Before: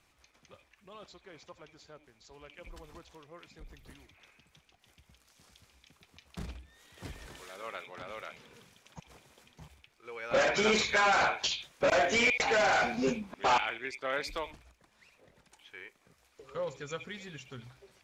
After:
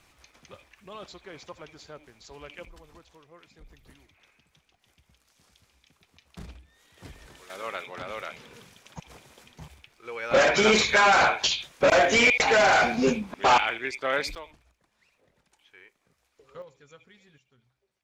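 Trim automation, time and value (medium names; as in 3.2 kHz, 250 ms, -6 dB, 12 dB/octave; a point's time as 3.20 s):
+8 dB
from 2.65 s -1.5 dB
from 7.50 s +7 dB
from 14.35 s -5 dB
from 16.62 s -13 dB
from 17.38 s -19.5 dB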